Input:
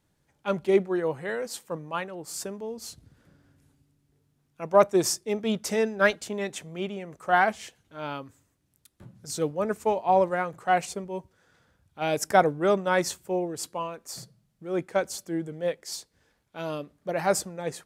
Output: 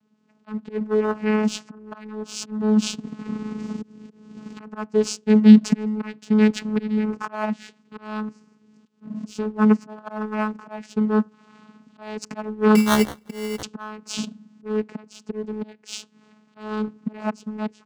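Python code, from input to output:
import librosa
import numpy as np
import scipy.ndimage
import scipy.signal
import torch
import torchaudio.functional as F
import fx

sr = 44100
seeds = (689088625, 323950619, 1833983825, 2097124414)

p1 = fx.recorder_agc(x, sr, target_db=-15.0, rise_db_per_s=15.0, max_gain_db=30)
p2 = fx.auto_swell(p1, sr, attack_ms=397.0)
p3 = p2 + 0.92 * np.pad(p2, (int(0.9 * sr / 1000.0), 0))[:len(p2)]
p4 = fx.vocoder(p3, sr, bands=8, carrier='saw', carrier_hz=214.0)
p5 = fx.sample_hold(p4, sr, seeds[0], rate_hz=2500.0, jitter_pct=0, at=(12.75, 13.63))
p6 = np.sign(p5) * np.maximum(np.abs(p5) - 10.0 ** (-42.5 / 20.0), 0.0)
p7 = p5 + (p6 * librosa.db_to_amplitude(-4.5))
y = p7 * librosa.db_to_amplitude(5.5)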